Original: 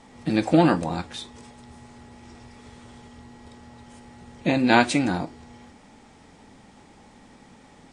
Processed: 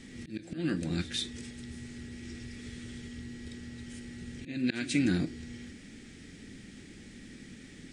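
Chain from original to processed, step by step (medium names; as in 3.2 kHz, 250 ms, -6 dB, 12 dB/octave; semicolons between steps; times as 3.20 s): slow attack 710 ms; FFT filter 350 Hz 0 dB, 920 Hz -25 dB, 1.7 kHz 0 dB; reverse echo 137 ms -18 dB; trim +3.5 dB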